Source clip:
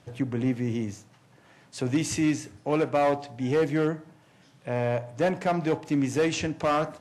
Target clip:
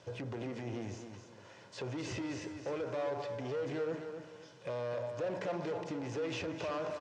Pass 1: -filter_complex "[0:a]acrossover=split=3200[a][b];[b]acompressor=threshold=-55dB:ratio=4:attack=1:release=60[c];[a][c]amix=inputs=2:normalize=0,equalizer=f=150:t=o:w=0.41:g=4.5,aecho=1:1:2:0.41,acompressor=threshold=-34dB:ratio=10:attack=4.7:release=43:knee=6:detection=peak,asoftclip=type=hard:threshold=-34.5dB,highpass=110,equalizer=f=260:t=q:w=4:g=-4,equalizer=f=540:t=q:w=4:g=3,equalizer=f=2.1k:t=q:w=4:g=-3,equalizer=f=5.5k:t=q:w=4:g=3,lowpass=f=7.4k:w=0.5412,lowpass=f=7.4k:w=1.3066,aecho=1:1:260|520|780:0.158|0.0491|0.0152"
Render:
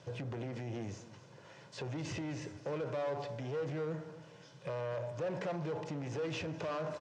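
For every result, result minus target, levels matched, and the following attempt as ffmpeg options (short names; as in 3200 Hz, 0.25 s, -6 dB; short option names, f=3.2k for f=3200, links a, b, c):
echo-to-direct -8 dB; 125 Hz band +4.0 dB
-filter_complex "[0:a]acrossover=split=3200[a][b];[b]acompressor=threshold=-55dB:ratio=4:attack=1:release=60[c];[a][c]amix=inputs=2:normalize=0,equalizer=f=150:t=o:w=0.41:g=4.5,aecho=1:1:2:0.41,acompressor=threshold=-34dB:ratio=10:attack=4.7:release=43:knee=6:detection=peak,asoftclip=type=hard:threshold=-34.5dB,highpass=110,equalizer=f=260:t=q:w=4:g=-4,equalizer=f=540:t=q:w=4:g=3,equalizer=f=2.1k:t=q:w=4:g=-3,equalizer=f=5.5k:t=q:w=4:g=3,lowpass=f=7.4k:w=0.5412,lowpass=f=7.4k:w=1.3066,aecho=1:1:260|520|780|1040:0.398|0.123|0.0383|0.0119"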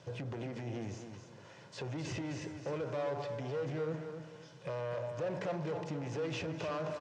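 125 Hz band +4.0 dB
-filter_complex "[0:a]acrossover=split=3200[a][b];[b]acompressor=threshold=-55dB:ratio=4:attack=1:release=60[c];[a][c]amix=inputs=2:normalize=0,equalizer=f=150:t=o:w=0.41:g=-7,aecho=1:1:2:0.41,acompressor=threshold=-34dB:ratio=10:attack=4.7:release=43:knee=6:detection=peak,asoftclip=type=hard:threshold=-34.5dB,highpass=110,equalizer=f=260:t=q:w=4:g=-4,equalizer=f=540:t=q:w=4:g=3,equalizer=f=2.1k:t=q:w=4:g=-3,equalizer=f=5.5k:t=q:w=4:g=3,lowpass=f=7.4k:w=0.5412,lowpass=f=7.4k:w=1.3066,aecho=1:1:260|520|780|1040:0.398|0.123|0.0383|0.0119"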